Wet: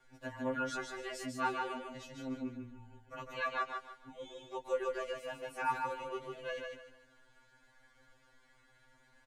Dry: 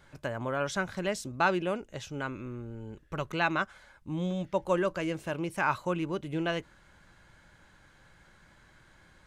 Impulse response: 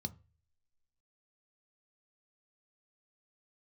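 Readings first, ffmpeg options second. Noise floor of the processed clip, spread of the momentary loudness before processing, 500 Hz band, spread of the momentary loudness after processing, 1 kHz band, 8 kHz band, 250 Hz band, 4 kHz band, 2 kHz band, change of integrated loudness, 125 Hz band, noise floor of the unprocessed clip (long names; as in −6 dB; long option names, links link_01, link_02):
−67 dBFS, 12 LU, −7.5 dB, 14 LU, −5.0 dB, −7.0 dB, −10.0 dB, −7.0 dB, −8.0 dB, −7.5 dB, −16.5 dB, −60 dBFS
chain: -af "aecho=1:1:3.5:0.67,aecho=1:1:150|300|450|600:0.631|0.189|0.0568|0.017,afftfilt=real='re*2.45*eq(mod(b,6),0)':imag='im*2.45*eq(mod(b,6),0)':win_size=2048:overlap=0.75,volume=-7.5dB"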